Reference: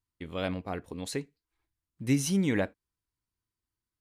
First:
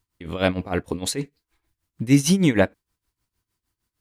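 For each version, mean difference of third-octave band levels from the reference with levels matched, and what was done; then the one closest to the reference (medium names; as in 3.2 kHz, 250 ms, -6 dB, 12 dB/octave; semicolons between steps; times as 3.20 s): 3.5 dB: in parallel at +1 dB: peak limiter -22.5 dBFS, peak gain reduction 8 dB; on the sum: tremolo 6.5 Hz, depth 82%; trim +8 dB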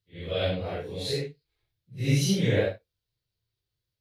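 6.5 dB: phase randomisation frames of 200 ms; graphic EQ 125/250/500/1000/4000/8000 Hz +10/-11/+10/-9/+10/-8 dB; trim +2.5 dB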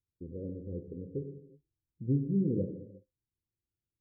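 14.0 dB: rippled Chebyshev low-pass 530 Hz, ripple 6 dB; gated-style reverb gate 390 ms falling, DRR 4.5 dB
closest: first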